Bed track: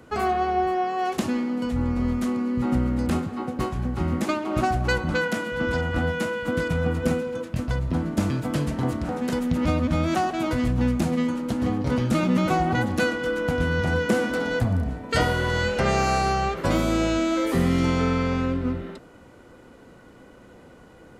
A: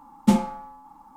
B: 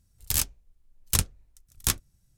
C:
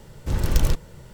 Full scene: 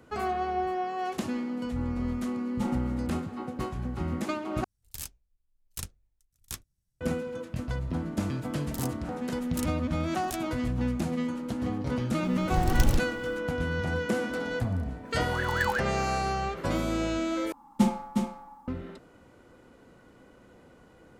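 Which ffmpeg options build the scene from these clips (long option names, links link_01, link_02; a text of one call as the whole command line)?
ffmpeg -i bed.wav -i cue0.wav -i cue1.wav -i cue2.wav -filter_complex "[1:a]asplit=2[link_01][link_02];[2:a]asplit=2[link_03][link_04];[3:a]asplit=2[link_05][link_06];[0:a]volume=-6.5dB[link_07];[link_01]aecho=1:1:288:0.158[link_08];[link_06]aeval=exprs='val(0)*sin(2*PI*1300*n/s+1300*0.35/5.4*sin(2*PI*5.4*n/s))':channel_layout=same[link_09];[link_02]aecho=1:1:361:0.562[link_10];[link_07]asplit=3[link_11][link_12][link_13];[link_11]atrim=end=4.644[link_14];[link_03]atrim=end=2.37,asetpts=PTS-STARTPTS,volume=-14dB[link_15];[link_12]atrim=start=7.006:end=17.524[link_16];[link_10]atrim=end=1.16,asetpts=PTS-STARTPTS,volume=-5dB[link_17];[link_13]atrim=start=18.676[link_18];[link_08]atrim=end=1.16,asetpts=PTS-STARTPTS,volume=-14.5dB,afade=type=in:duration=0.004:curve=hsin,afade=type=out:start_time=1.156:duration=0.004:curve=hsin,adelay=2320[link_19];[link_04]atrim=end=2.37,asetpts=PTS-STARTPTS,volume=-14.5dB,afade=type=in:duration=0.004:curve=hsin,afade=type=out:start_time=2.366:duration=0.004:curve=hsin,adelay=8440[link_20];[link_05]atrim=end=1.13,asetpts=PTS-STARTPTS,volume=-4dB,afade=type=in:duration=0.004:curve=hsin,afade=type=out:start_time=1.126:duration=0.004:curve=hsin,adelay=12240[link_21];[link_09]atrim=end=1.13,asetpts=PTS-STARTPTS,volume=-10dB,afade=type=in:duration=0.004:curve=hsin,afade=type=out:start_time=1.126:duration=0.004:curve=hsin,adelay=15050[link_22];[link_14][link_15]acrossfade=duration=0.004:curve1=hsin:curve2=hsin[link_23];[link_23][link_16]acrossfade=duration=0.004:curve1=hsin:curve2=hsin[link_24];[link_24][link_17]acrossfade=duration=0.004:curve1=hsin:curve2=hsin[link_25];[link_25][link_18]acrossfade=duration=0.004:curve1=hsin:curve2=hsin[link_26];[link_26][link_19][link_20][link_21][link_22]amix=inputs=5:normalize=0" out.wav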